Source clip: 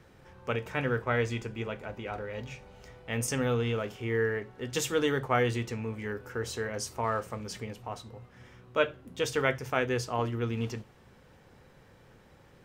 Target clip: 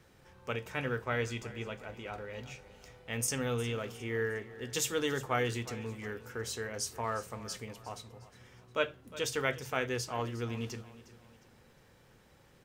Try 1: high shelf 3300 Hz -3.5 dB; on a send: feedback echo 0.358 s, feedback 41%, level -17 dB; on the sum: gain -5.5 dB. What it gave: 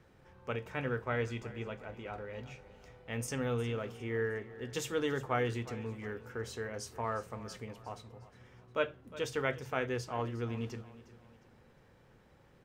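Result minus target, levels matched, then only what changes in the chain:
8000 Hz band -8.0 dB
change: high shelf 3300 Hz +8 dB

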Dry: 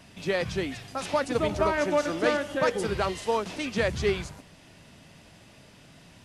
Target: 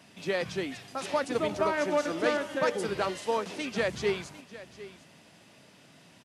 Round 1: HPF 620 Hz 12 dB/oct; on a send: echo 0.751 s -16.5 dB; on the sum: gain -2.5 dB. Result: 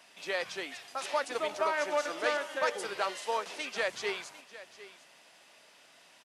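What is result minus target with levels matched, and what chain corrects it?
125 Hz band -17.5 dB
HPF 160 Hz 12 dB/oct; on a send: echo 0.751 s -16.5 dB; on the sum: gain -2.5 dB

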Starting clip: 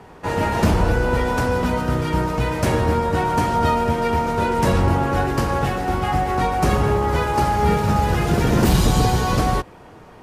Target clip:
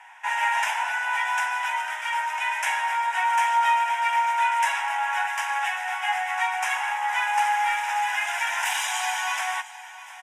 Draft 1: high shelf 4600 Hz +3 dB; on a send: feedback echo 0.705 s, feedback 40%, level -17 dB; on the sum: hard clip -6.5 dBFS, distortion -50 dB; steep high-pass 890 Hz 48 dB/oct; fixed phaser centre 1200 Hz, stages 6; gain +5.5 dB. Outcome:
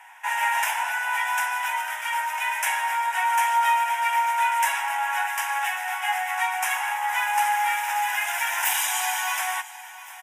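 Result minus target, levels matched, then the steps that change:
8000 Hz band +4.0 dB
add first: LPF 7000 Hz 12 dB/oct

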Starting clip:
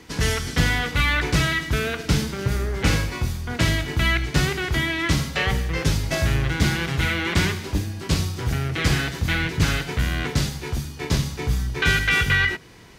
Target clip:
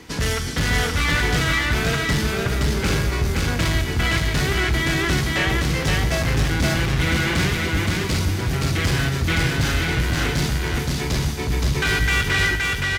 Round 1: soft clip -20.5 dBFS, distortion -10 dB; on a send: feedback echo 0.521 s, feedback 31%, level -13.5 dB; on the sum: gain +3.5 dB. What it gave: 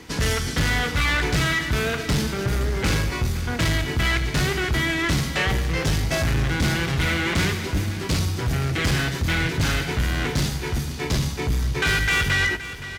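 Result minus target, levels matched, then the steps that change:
echo-to-direct -11.5 dB
change: feedback echo 0.521 s, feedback 31%, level -2 dB

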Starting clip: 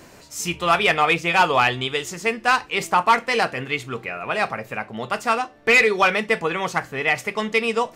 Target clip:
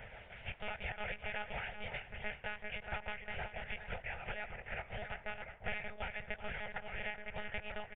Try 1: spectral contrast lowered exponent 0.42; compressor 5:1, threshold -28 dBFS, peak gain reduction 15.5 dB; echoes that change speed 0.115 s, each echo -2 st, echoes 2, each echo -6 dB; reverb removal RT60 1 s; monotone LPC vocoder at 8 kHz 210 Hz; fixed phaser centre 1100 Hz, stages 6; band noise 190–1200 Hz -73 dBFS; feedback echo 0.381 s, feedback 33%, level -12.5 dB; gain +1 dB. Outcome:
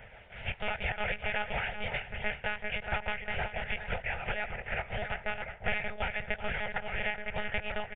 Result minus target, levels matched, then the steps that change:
compressor: peak gain reduction -8.5 dB
change: compressor 5:1, threshold -38.5 dBFS, peak gain reduction 24 dB

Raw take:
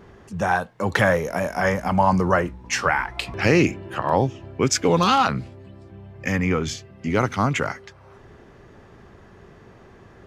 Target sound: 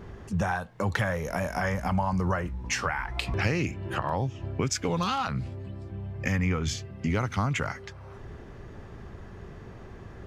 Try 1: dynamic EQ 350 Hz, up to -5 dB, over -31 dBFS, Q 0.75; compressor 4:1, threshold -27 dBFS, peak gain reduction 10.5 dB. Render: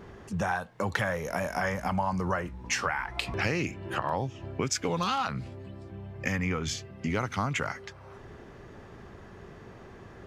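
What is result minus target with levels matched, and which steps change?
125 Hz band -4.0 dB
add after compressor: low shelf 120 Hz +10.5 dB

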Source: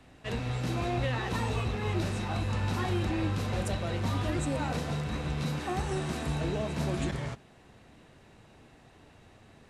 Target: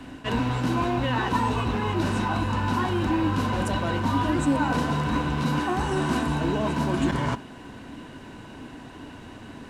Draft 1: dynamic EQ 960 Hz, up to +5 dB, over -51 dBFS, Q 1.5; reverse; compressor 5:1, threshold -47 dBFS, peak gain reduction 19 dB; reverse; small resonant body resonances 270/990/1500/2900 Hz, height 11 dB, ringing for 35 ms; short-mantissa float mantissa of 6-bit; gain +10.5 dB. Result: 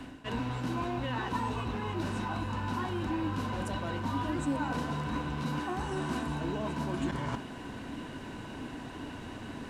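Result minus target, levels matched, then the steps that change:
compressor: peak gain reduction +9 dB
change: compressor 5:1, threshold -36 dBFS, peak gain reduction 10.5 dB

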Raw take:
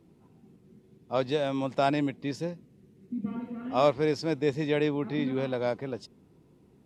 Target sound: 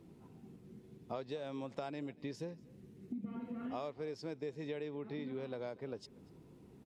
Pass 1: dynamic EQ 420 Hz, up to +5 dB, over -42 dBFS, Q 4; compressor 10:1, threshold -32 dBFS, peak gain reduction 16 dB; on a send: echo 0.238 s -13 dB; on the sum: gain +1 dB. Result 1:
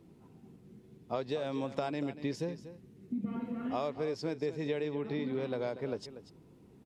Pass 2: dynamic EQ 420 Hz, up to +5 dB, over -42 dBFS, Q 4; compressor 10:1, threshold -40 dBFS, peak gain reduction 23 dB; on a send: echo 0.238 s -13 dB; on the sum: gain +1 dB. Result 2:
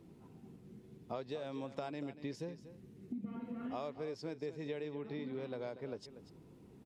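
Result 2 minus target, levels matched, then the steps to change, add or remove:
echo-to-direct +10.5 dB
change: echo 0.238 s -23.5 dB

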